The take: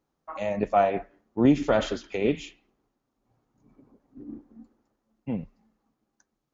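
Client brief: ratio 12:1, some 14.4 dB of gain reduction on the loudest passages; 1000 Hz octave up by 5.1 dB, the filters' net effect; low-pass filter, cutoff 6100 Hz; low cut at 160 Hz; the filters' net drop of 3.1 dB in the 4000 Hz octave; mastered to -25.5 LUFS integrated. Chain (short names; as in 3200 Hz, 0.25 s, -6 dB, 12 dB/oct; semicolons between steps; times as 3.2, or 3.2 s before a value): HPF 160 Hz; LPF 6100 Hz; bell 1000 Hz +9 dB; bell 4000 Hz -4.5 dB; compressor 12:1, threshold -27 dBFS; gain +9.5 dB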